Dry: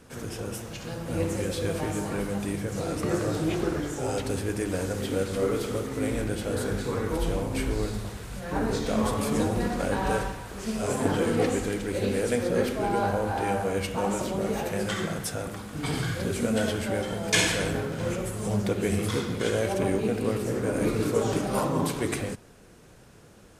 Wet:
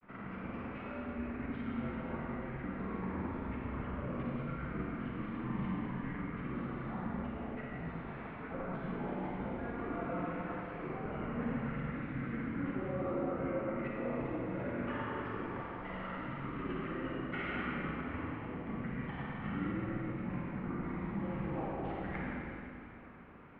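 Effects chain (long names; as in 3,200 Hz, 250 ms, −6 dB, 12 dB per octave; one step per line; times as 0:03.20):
mains-hum notches 60/120/180/240/300/360/420/480 Hz
reversed playback
downward compressor 5 to 1, threshold −35 dBFS, peak gain reduction 15 dB
reversed playback
granular cloud, spray 24 ms, pitch spread up and down by 0 semitones
four-comb reverb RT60 2.7 s, DRR −3.5 dB
single-sideband voice off tune −260 Hz 380–2,600 Hz
level −1 dB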